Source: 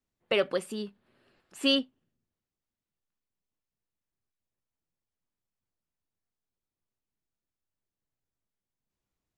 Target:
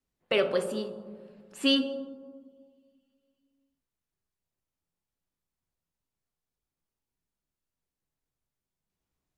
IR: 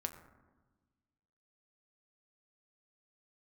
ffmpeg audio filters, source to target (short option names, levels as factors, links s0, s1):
-filter_complex "[1:a]atrim=start_sample=2205,asetrate=29106,aresample=44100[s0];[0:a][s0]afir=irnorm=-1:irlink=0"